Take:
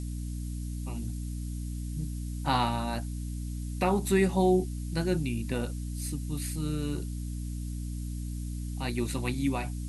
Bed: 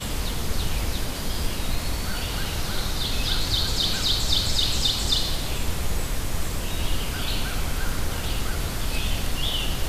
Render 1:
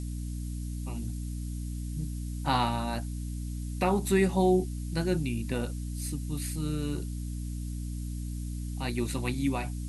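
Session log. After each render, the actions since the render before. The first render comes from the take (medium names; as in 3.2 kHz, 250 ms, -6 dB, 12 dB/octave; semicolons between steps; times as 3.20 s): no audible change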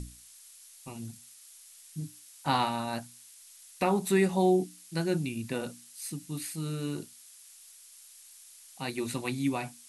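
hum notches 60/120/180/240/300 Hz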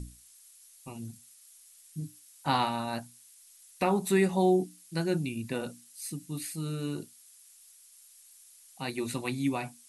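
noise reduction 6 dB, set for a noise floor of -54 dBFS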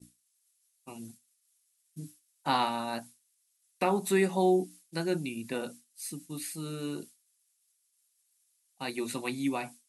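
high-pass 200 Hz 12 dB/octave; expander -44 dBFS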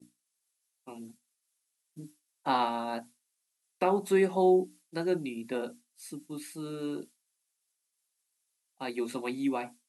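high-pass 300 Hz 12 dB/octave; tilt EQ -2.5 dB/octave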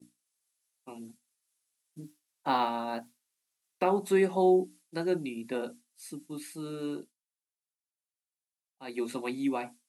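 2.01–3.87 s: decimation joined by straight lines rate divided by 2×; 6.93–8.98 s: dip -17 dB, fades 0.20 s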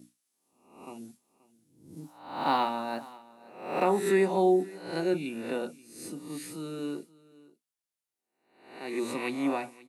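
reverse spectral sustain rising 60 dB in 0.66 s; delay 530 ms -21.5 dB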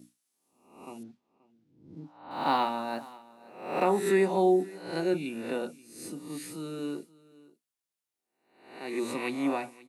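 1.03–2.31 s: distance through air 240 m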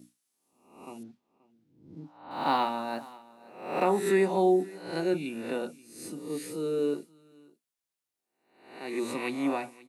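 6.18–6.94 s: peaking EQ 460 Hz +13 dB 0.56 oct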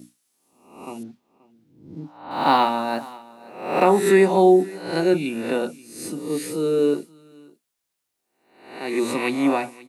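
trim +9 dB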